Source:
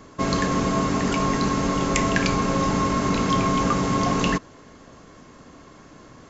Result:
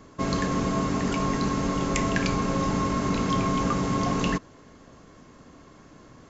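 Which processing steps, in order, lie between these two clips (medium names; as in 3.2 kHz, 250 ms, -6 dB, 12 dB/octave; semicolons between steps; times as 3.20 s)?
bass shelf 360 Hz +3 dB; trim -5 dB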